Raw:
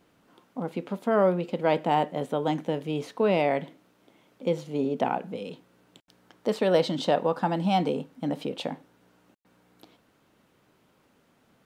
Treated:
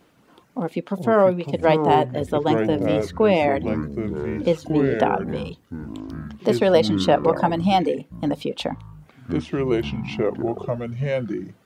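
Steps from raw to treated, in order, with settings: reverb removal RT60 0.84 s; ever faster or slower copies 176 ms, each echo -6 st, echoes 3, each echo -6 dB; trim +6.5 dB

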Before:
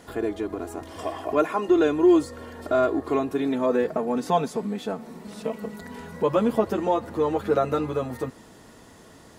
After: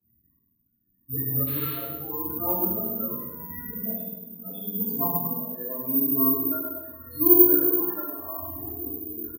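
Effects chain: reverse the whole clip; peaking EQ 510 Hz -8.5 dB 1.4 oct; gate with hold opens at -38 dBFS; in parallel at +1 dB: compression, threshold -36 dBFS, peak gain reduction 16 dB; on the sum: loudest bins only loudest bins 8; tremolo 0.82 Hz, depth 71%; painted sound noise, 1.46–1.75 s, 840–4500 Hz -41 dBFS; feedback delay 101 ms, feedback 39%, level -6.5 dB; reverberation RT60 0.75 s, pre-delay 3 ms, DRR -12.5 dB; careless resampling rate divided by 3×, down filtered, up zero stuff; trim -18 dB

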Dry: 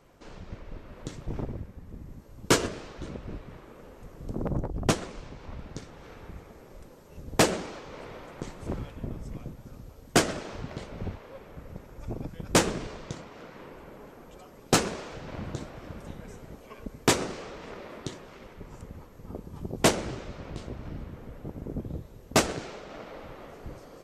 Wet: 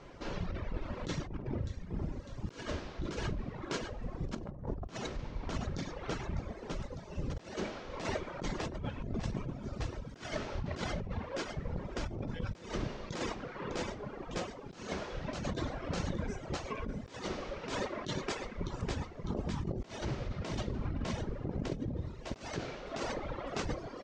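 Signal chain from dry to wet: low-pass 6.1 kHz 24 dB/octave; feedback delay 603 ms, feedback 57%, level -15 dB; gated-style reverb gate 160 ms flat, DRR 2.5 dB; reverb removal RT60 1.3 s; compressor with a negative ratio -40 dBFS, ratio -1; trim +1 dB

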